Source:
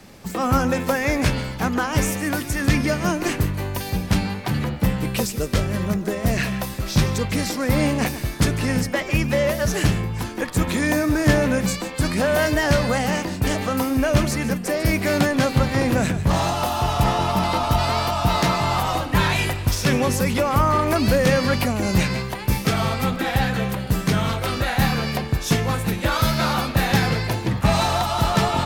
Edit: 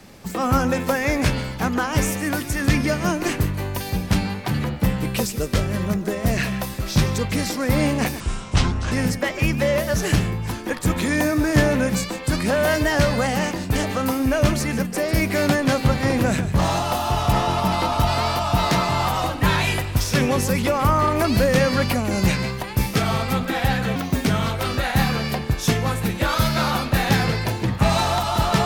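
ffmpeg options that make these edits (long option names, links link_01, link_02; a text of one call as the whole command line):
ffmpeg -i in.wav -filter_complex "[0:a]asplit=5[link_01][link_02][link_03][link_04][link_05];[link_01]atrim=end=8.204[link_06];[link_02]atrim=start=8.2:end=8.63,asetpts=PTS-STARTPTS,asetrate=26460,aresample=44100[link_07];[link_03]atrim=start=8.626:end=23.674[link_08];[link_04]atrim=start=23.67:end=24.09,asetpts=PTS-STARTPTS,asetrate=60858,aresample=44100[link_09];[link_05]atrim=start=24.086[link_10];[link_06][link_07]acrossfade=duration=0.004:curve1=hsin:curve2=hsin[link_11];[link_11][link_08]acrossfade=duration=0.004:curve1=hsin:curve2=hsin[link_12];[link_12][link_09]acrossfade=duration=0.004:curve1=hsin:curve2=hsin[link_13];[link_13][link_10]acrossfade=duration=0.004:curve1=hsin:curve2=hsin" out.wav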